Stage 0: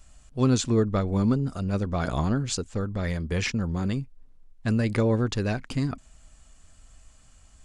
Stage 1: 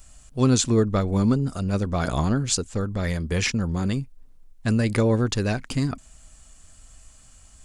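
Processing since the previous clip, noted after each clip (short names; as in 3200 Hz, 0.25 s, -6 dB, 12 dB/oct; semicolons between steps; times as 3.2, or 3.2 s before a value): high shelf 7500 Hz +11 dB; gain +2.5 dB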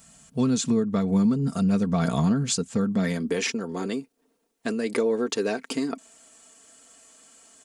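comb 4.4 ms, depth 56%; compressor 5:1, threshold -23 dBFS, peak gain reduction 10 dB; high-pass sweep 150 Hz -> 350 Hz, 2.78–3.48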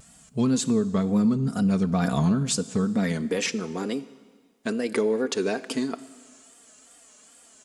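wow and flutter 100 cents; on a send at -16 dB: reverb RT60 1.6 s, pre-delay 23 ms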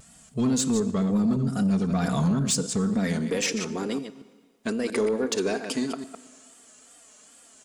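reverse delay 0.114 s, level -9 dB; dynamic EQ 7000 Hz, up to +4 dB, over -44 dBFS, Q 0.98; soft clip -16 dBFS, distortion -19 dB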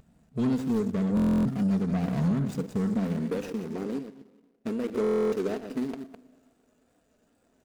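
median filter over 41 samples; stuck buffer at 1.15/5.02, samples 1024, times 12; gain -2 dB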